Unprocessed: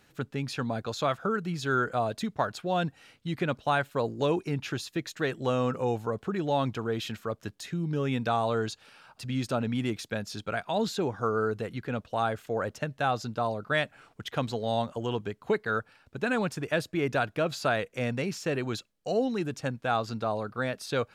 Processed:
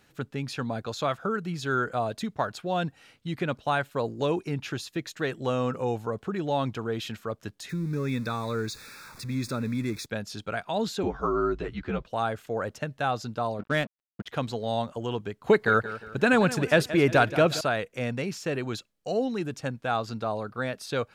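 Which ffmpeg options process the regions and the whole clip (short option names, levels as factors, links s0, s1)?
-filter_complex "[0:a]asettb=1/sr,asplit=3[s0][s1][s2];[s0]atrim=end=7.694[s3];[s1]atrim=start=7.69:end=10.06,asetpts=PTS-STARTPTS,afade=t=in:d=0.004:c=qsin,afade=t=out:st=2.366:d=0.004:c=qsin,aeval=exprs='val(0)+0.5*0.00891*sgn(val(0))':c=same,asuperstop=centerf=3000:order=8:qfactor=3.5,equalizer=f=720:t=o:w=0.58:g=-14[s4];[s2]atrim=start=10.056[s5];[s3][s4]acrossfade=d=0.004:c1=hsin:c2=qsin[s6];[s6][s5]acrossfade=d=0.004:c1=qsin:c2=hsin,asettb=1/sr,asplit=3[s7][s8][s9];[s7]atrim=end=11.034[s10];[s8]atrim=start=11.03:end=12.06,asetpts=PTS-STARTPTS,afade=t=in:d=0.004:c=qsin,afade=t=out:st=1.026:d=0.004:c=qsin,lowpass=4900,asplit=2[s11][s12];[s12]adelay=12,volume=0.75[s13];[s11][s13]amix=inputs=2:normalize=0,atrim=end_sample=45423,afreqshift=-54[s14];[s9]atrim=start=12.056[s15];[s10][s14]acrossfade=d=0.004:c1=hsin:c2=qsin[s16];[s16][s15]acrossfade=d=0.004:c1=qsin:c2=hsin,asettb=1/sr,asplit=3[s17][s18][s19];[s17]atrim=end=13.594[s20];[s18]atrim=start=13.59:end=14.29,asetpts=PTS-STARTPTS,afade=t=in:d=0.004:c=qsin,afade=t=out:st=0.696:d=0.004:c=qsin,equalizer=f=220:w=1.4:g=12,aeval=exprs='sgn(val(0))*max(abs(val(0))-0.00794,0)':c=same,adynamicsmooth=sensitivity=6.5:basefreq=4100[s21];[s19]atrim=start=14.286[s22];[s20][s21]acrossfade=d=0.004:c1=hsin:c2=qsin[s23];[s23][s22]acrossfade=d=0.004:c1=qsin:c2=hsin,asettb=1/sr,asplit=3[s24][s25][s26];[s24]atrim=end=15.444[s27];[s25]atrim=start=15.44:end=17.61,asetpts=PTS-STARTPTS,afade=t=in:d=0.004:c=qsin,afade=t=out:st=2.166:d=0.004:c=qsin,acontrast=83,aecho=1:1:176|352|528|704:0.2|0.0758|0.0288|0.0109,atrim=end_sample=95697[s28];[s26]atrim=start=17.606[s29];[s27][s28]acrossfade=d=0.004:c1=hsin:c2=qsin[s30];[s30][s29]acrossfade=d=0.004:c1=qsin:c2=hsin"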